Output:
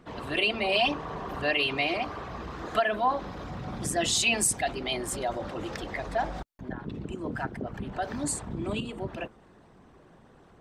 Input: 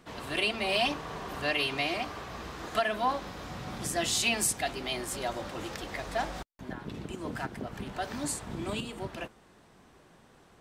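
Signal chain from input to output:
spectral envelope exaggerated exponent 1.5
level +3 dB

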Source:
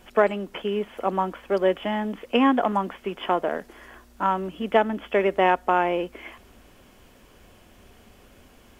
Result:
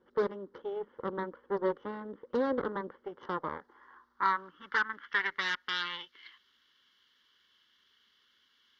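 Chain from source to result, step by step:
harmonic generator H 8 −11 dB, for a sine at −5.5 dBFS
phaser with its sweep stopped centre 2,500 Hz, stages 6
band-pass filter sweep 520 Hz → 3,000 Hz, 0:02.93–0:06.02

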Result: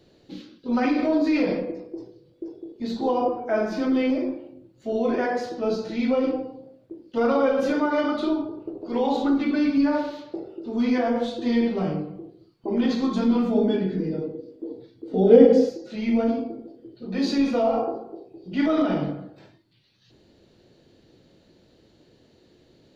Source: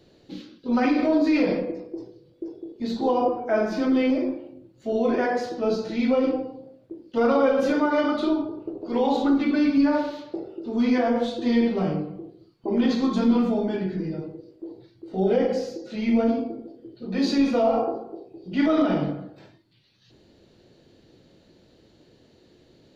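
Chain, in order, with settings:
0:13.54–0:15.68: hollow resonant body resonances 260/450/3,400 Hz, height 12 dB → 16 dB, ringing for 65 ms
level −1 dB

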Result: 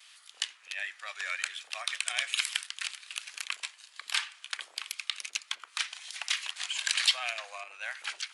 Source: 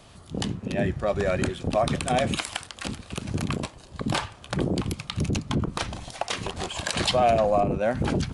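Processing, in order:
pitch vibrato 1.3 Hz 39 cents
four-pole ladder high-pass 1,500 Hz, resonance 25%
level +6 dB

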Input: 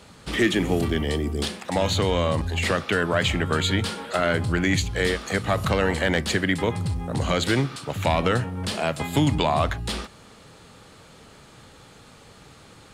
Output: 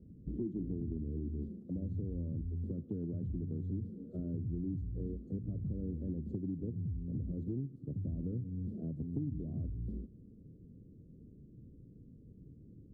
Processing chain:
inverse Chebyshev low-pass filter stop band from 840 Hz, stop band 50 dB
downward compressor 4 to 1, threshold −34 dBFS, peak gain reduction 14 dB
level −2.5 dB

